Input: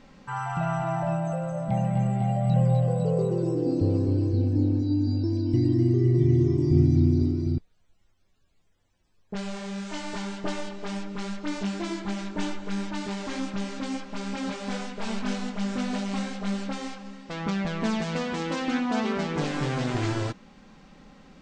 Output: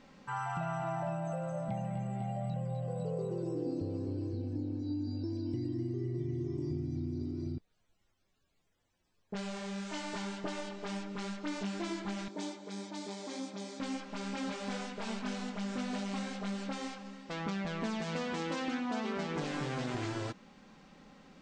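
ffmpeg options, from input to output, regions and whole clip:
ffmpeg -i in.wav -filter_complex "[0:a]asettb=1/sr,asplit=3[link_01][link_02][link_03];[link_01]atrim=end=12.284[link_04];[link_02]atrim=start=12.28:end=13.8,asetpts=PTS-STARTPTS,afade=type=in:duration=0.004:curve=qsin,afade=type=out:start_time=1.516:duration=0.004:curve=qsin,highpass=280,equalizer=frequency=1500:width_type=o:width=1.3:gain=-11,bandreject=frequency=2800:width=5.3[link_05];[link_03]atrim=start=13.796[link_06];[link_04][link_05]acrossfade=duration=0.004:curve1=hsin:curve2=qsin[link_07];[link_07][link_06]acrossfade=duration=0.004:curve1=qsin:curve2=hsin,acompressor=threshold=-27dB:ratio=6,lowshelf=frequency=97:gain=-9,volume=-4dB" out.wav

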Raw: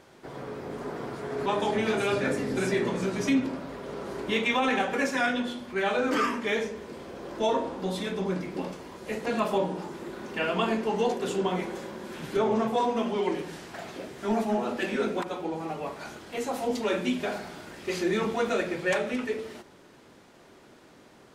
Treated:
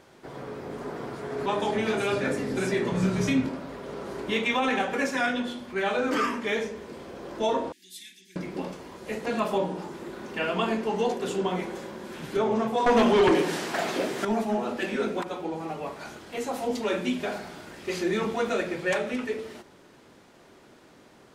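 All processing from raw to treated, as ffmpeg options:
ffmpeg -i in.wav -filter_complex "[0:a]asettb=1/sr,asplit=3[link_01][link_02][link_03];[link_01]atrim=end=2.924[link_04];[link_02]atrim=start=2.92:end=3.49,asetpts=PTS-STARTPTS,afade=type=in:duration=0.004:curve=qsin,afade=type=out:start_time=0.566:duration=0.004:curve=qsin,lowshelf=frequency=200:width_type=q:width=1.5:gain=6.5,asplit=2[link_05][link_06];[link_06]adelay=27,volume=-5dB[link_07];[link_05][link_07]amix=inputs=2:normalize=0,atrim=end_sample=25137[link_08];[link_03]atrim=start=3.486[link_09];[link_04][link_08]acrossfade=duration=0.004:curve1=hsin:curve2=qsin[link_10];[link_10][link_09]acrossfade=duration=0.004:curve1=qsin:curve2=hsin,asettb=1/sr,asplit=3[link_11][link_12][link_13];[link_11]atrim=end=7.724[link_14];[link_12]atrim=start=7.72:end=8.36,asetpts=PTS-STARTPTS,afade=type=in:duration=0.004:curve=qsin,afade=type=out:start_time=0.636:duration=0.004:curve=qsin,asuperstop=centerf=790:order=20:qfactor=0.6,aderivative[link_15];[link_13]atrim=start=8.356[link_16];[link_14][link_15]acrossfade=duration=0.004:curve1=hsin:curve2=qsin[link_17];[link_17][link_16]acrossfade=duration=0.004:curve1=qsin:curve2=hsin,asettb=1/sr,asplit=3[link_18][link_19][link_20];[link_18]atrim=end=12.864[link_21];[link_19]atrim=start=12.86:end=14.25,asetpts=PTS-STARTPTS,afade=type=in:duration=0.004:curve=qsin,afade=type=out:start_time=1.386:duration=0.004:curve=qsin,highpass=200,aeval=exprs='0.178*sin(PI/2*2.51*val(0)/0.178)':channel_layout=same[link_22];[link_20]atrim=start=14.246[link_23];[link_21][link_22]acrossfade=duration=0.004:curve1=hsin:curve2=qsin[link_24];[link_24][link_23]acrossfade=duration=0.004:curve1=qsin:curve2=hsin" out.wav

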